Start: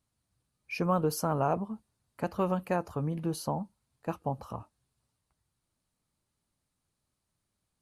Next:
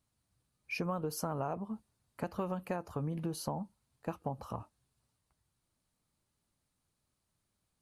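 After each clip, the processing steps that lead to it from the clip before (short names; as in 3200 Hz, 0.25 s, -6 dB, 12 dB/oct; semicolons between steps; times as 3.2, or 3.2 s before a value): compressor 5:1, threshold -33 dBFS, peak gain reduction 10 dB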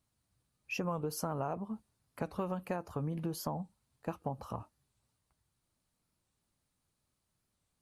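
record warp 45 rpm, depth 160 cents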